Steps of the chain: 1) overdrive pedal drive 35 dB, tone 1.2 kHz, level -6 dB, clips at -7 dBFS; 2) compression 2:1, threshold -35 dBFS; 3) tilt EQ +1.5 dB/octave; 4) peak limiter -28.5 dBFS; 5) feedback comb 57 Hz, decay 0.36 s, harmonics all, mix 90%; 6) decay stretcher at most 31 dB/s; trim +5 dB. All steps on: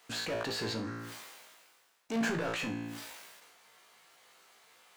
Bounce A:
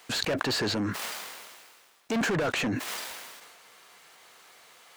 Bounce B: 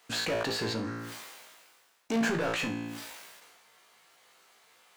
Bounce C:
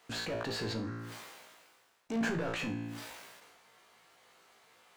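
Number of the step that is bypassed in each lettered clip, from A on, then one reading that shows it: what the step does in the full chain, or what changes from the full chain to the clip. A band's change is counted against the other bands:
5, 8 kHz band +1.5 dB; 4, loudness change +3.5 LU; 3, 125 Hz band +3.5 dB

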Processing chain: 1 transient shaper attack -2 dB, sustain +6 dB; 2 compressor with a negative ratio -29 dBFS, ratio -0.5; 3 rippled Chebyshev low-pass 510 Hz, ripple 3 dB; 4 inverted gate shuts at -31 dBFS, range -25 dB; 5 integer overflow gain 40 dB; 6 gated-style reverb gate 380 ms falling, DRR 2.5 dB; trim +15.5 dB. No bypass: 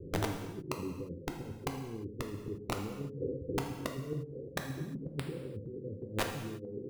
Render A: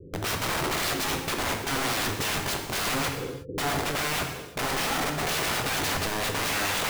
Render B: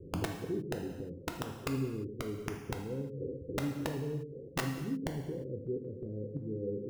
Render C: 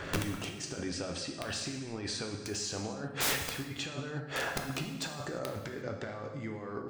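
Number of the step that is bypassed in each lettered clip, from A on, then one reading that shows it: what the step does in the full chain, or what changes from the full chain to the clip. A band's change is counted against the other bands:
4, momentary loudness spread change -2 LU; 2, crest factor change -2.0 dB; 3, 8 kHz band +10.0 dB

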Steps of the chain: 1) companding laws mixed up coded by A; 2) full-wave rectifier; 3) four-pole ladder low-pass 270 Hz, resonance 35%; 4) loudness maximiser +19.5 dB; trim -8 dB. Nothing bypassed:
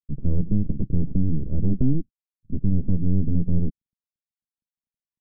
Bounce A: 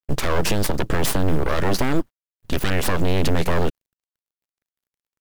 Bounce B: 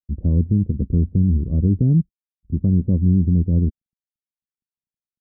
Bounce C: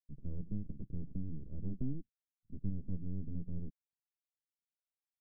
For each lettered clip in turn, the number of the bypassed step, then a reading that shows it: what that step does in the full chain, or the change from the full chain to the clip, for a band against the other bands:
3, loudness change +2.5 LU; 2, loudness change +6.5 LU; 4, crest factor change +4.0 dB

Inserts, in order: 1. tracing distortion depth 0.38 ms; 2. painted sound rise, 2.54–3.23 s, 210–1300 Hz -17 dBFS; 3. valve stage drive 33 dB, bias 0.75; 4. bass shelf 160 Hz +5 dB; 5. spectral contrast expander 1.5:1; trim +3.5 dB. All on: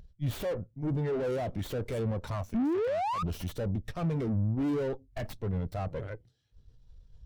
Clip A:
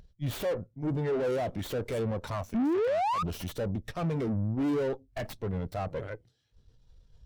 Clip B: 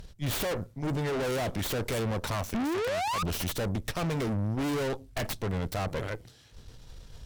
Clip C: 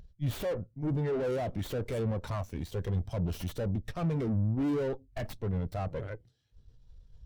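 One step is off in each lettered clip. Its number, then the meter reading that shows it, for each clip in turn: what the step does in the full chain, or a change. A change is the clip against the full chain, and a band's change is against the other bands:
4, crest factor change -2.5 dB; 5, 8 kHz band +12.0 dB; 2, 1 kHz band -5.0 dB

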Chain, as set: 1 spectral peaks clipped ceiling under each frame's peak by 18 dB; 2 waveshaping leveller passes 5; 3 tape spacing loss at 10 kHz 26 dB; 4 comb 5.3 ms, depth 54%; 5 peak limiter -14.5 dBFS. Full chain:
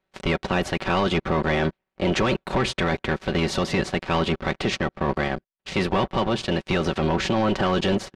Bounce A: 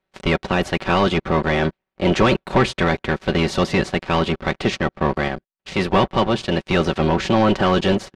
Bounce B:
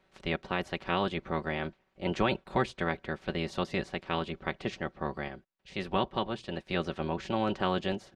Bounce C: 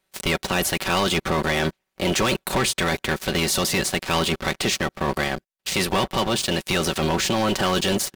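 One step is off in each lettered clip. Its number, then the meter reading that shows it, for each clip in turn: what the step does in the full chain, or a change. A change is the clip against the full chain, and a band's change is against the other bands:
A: 5, mean gain reduction 2.5 dB; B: 2, crest factor change +9.0 dB; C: 3, 8 kHz band +13.5 dB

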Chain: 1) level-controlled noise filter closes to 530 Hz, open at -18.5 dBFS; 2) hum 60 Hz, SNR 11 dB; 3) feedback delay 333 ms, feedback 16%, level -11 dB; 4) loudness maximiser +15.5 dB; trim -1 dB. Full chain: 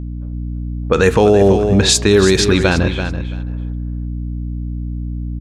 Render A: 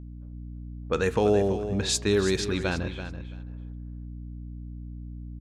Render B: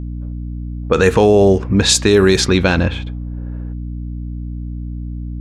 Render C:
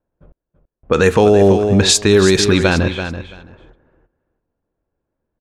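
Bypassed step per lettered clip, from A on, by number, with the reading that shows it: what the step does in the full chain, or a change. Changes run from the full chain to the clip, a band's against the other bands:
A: 4, crest factor change +4.0 dB; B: 3, momentary loudness spread change +2 LU; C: 2, 125 Hz band -2.0 dB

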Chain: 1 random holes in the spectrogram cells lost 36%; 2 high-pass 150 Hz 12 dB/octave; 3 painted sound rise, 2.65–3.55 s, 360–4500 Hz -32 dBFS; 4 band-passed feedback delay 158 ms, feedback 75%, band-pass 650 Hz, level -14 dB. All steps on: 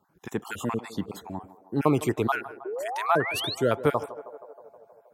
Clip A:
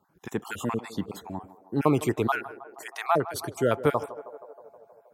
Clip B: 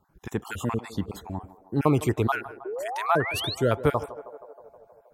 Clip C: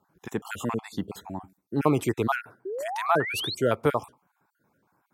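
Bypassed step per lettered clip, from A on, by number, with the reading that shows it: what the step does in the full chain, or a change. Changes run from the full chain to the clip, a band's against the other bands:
3, 4 kHz band -7.0 dB; 2, 125 Hz band +4.5 dB; 4, echo-to-direct -15.0 dB to none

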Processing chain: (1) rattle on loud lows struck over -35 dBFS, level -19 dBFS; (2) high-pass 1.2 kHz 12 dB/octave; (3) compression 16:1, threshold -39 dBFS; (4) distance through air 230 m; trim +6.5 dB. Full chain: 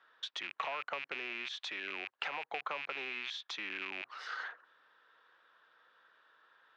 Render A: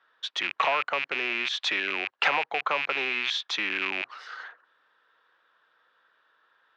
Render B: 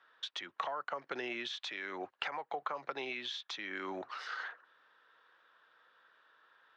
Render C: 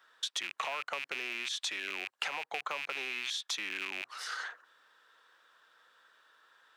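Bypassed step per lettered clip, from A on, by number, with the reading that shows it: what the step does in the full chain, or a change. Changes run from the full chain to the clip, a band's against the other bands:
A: 3, mean gain reduction 11.0 dB; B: 1, 250 Hz band +6.0 dB; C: 4, 8 kHz band +14.5 dB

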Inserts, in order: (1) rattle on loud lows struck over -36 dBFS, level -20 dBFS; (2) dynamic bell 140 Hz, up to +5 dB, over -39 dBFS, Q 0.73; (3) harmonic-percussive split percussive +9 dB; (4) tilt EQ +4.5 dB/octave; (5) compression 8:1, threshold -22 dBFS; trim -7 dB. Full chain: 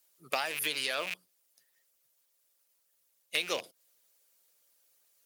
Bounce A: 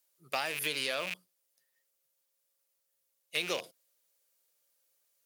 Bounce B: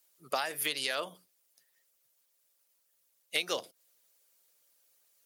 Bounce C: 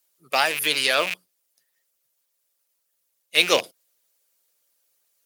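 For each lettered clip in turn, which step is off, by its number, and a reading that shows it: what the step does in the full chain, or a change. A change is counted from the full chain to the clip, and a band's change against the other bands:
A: 3, 125 Hz band +6.0 dB; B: 1, 2 kHz band -2.5 dB; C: 5, mean gain reduction 11.0 dB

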